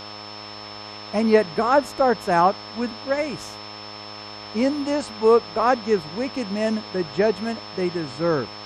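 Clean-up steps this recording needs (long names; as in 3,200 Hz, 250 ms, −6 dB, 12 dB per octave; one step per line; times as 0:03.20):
hum removal 104.5 Hz, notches 12
notch filter 5,300 Hz, Q 30
noise reduction from a noise print 29 dB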